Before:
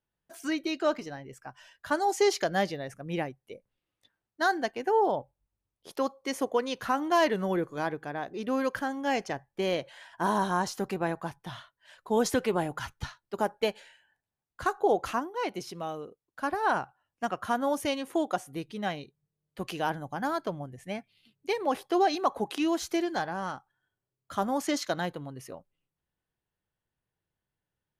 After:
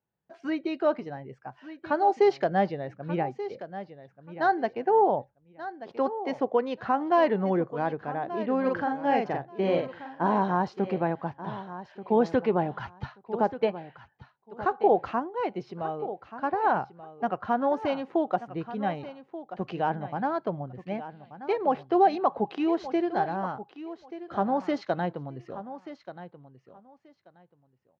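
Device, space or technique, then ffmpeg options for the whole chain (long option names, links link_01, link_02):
guitar cabinet: -filter_complex "[0:a]asettb=1/sr,asplit=3[link_01][link_02][link_03];[link_01]atrim=end=13.654[link_04];[link_02]atrim=start=13.65:end=14.63,asetpts=PTS-STARTPTS,afade=type=in:duration=0.004:curve=qsin,afade=type=out:start_time=0.976:duration=0.004:curve=qsin,lowpass=4100[link_05];[link_03]atrim=start=14.626[link_06];[link_04][link_05]acrossfade=duration=0.004:curve1=hsin:curve2=qsin[link_07];[link_07][link_06]acrossfade=duration=0.004:curve1=qsin:curve2=hsin,tiltshelf=frequency=970:gain=5,asplit=3[link_08][link_09][link_10];[link_08]afade=type=out:start_time=8.64:duration=0.02[link_11];[link_09]asplit=2[link_12][link_13];[link_13]adelay=46,volume=-3dB[link_14];[link_12][link_14]amix=inputs=2:normalize=0,afade=type=in:start_time=8.64:duration=0.02,afade=type=out:start_time=10.23:duration=0.02[link_15];[link_10]afade=type=in:start_time=10.23:duration=0.02[link_16];[link_11][link_15][link_16]amix=inputs=3:normalize=0,highpass=110,equalizer=frequency=290:width_type=q:width=4:gain=-4,equalizer=frequency=800:width_type=q:width=4:gain=4,equalizer=frequency=3400:width_type=q:width=4:gain=-5,lowpass=frequency=4000:width=0.5412,lowpass=frequency=4000:width=1.3066,aecho=1:1:1183|2366:0.211|0.038"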